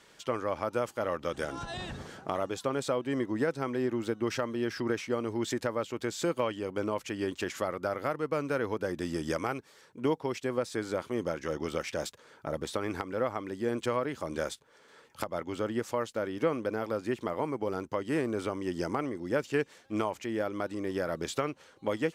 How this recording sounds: noise floor -60 dBFS; spectral tilt -5.0 dB/octave

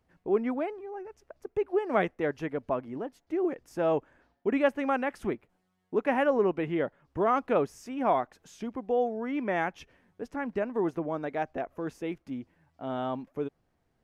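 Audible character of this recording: noise floor -75 dBFS; spectral tilt -2.0 dB/octave

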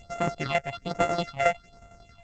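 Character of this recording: a buzz of ramps at a fixed pitch in blocks of 64 samples; phasing stages 6, 1.2 Hz, lowest notch 280–4700 Hz; tremolo saw down 11 Hz, depth 65%; G.722

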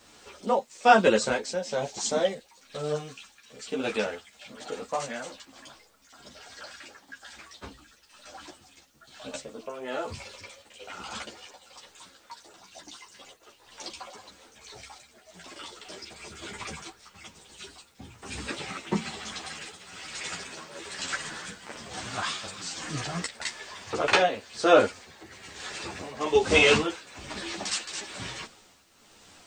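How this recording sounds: tremolo triangle 1.1 Hz, depth 75%; a quantiser's noise floor 12-bit, dither triangular; a shimmering, thickened sound

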